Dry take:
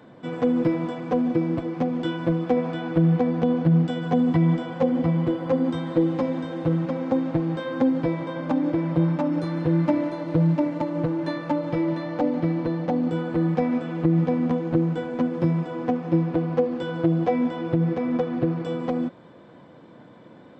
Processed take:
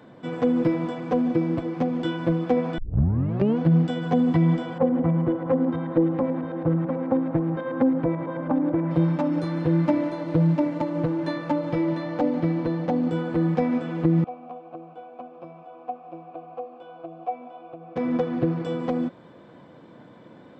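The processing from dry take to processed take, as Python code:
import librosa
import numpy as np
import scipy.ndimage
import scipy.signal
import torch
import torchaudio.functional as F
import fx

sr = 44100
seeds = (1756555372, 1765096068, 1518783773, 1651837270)

y = fx.filter_lfo_lowpass(x, sr, shape='saw_up', hz=9.2, low_hz=940.0, high_hz=2200.0, q=0.9, at=(4.78, 8.91))
y = fx.vowel_filter(y, sr, vowel='a', at=(14.24, 17.96))
y = fx.edit(y, sr, fx.tape_start(start_s=2.78, length_s=0.8), tone=tone)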